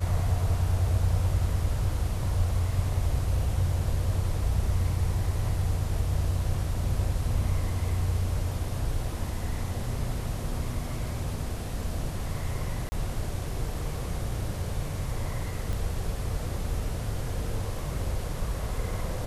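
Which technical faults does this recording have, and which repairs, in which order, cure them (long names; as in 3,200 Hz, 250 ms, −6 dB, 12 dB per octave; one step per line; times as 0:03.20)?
0:12.89–0:12.92: drop-out 30 ms
0:15.73: click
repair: click removal
repair the gap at 0:12.89, 30 ms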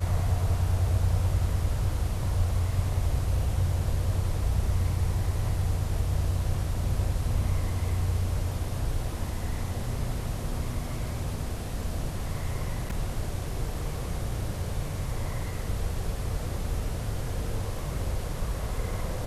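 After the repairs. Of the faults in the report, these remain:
none of them is left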